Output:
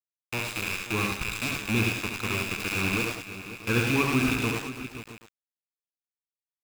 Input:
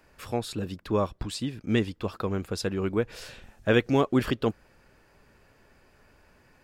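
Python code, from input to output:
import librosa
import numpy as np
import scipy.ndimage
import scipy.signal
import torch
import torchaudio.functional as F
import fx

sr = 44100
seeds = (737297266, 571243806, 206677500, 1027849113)

y = fx.rattle_buzz(x, sr, strikes_db=-37.0, level_db=-15.0)
y = y + 0.99 * np.pad(y, (int(0.8 * sr / 1000.0), 0))[:len(y)]
y = y + 10.0 ** (-5.5 / 20.0) * np.pad(y, (int(105 * sr / 1000.0), 0))[:len(y)]
y = np.where(np.abs(y) >= 10.0 ** (-21.5 / 20.0), y, 0.0)
y = fx.echo_multitap(y, sr, ms=(70, 85, 334, 529, 669), db=(-6.5, -8.0, -17.0, -13.0, -17.5))
y = y * librosa.db_to_amplitude(-7.0)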